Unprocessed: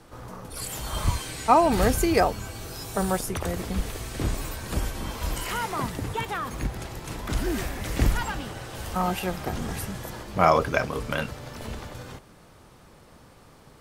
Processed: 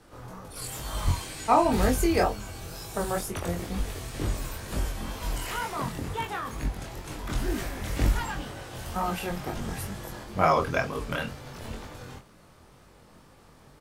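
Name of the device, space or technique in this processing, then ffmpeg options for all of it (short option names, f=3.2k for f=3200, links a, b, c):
double-tracked vocal: -filter_complex "[0:a]asplit=2[a][b];[b]adelay=23,volume=-11dB[c];[a][c]amix=inputs=2:normalize=0,flanger=delay=19.5:depth=4.7:speed=2.1"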